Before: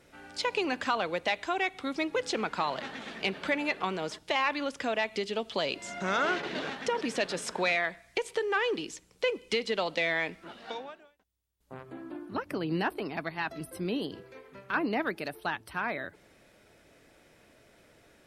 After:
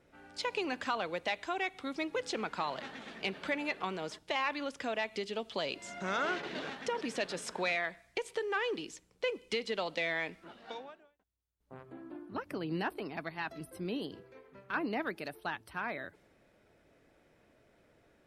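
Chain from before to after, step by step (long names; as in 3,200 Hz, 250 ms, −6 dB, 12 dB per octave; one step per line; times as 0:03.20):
one half of a high-frequency compander decoder only
level −5 dB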